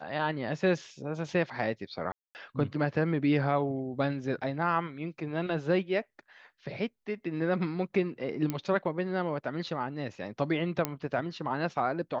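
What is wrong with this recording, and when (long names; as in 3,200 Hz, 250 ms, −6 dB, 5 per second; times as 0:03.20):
0:02.12–0:02.35: drop-out 229 ms
0:08.50: click −17 dBFS
0:10.85: click −12 dBFS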